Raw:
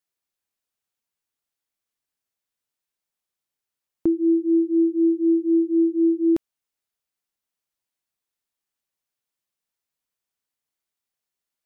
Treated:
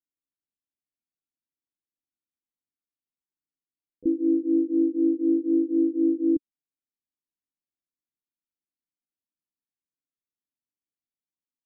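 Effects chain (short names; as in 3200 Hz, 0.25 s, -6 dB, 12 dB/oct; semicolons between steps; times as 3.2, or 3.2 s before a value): harmoniser -3 st -10 dB, +7 st -11 dB; ladder low-pass 340 Hz, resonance 55%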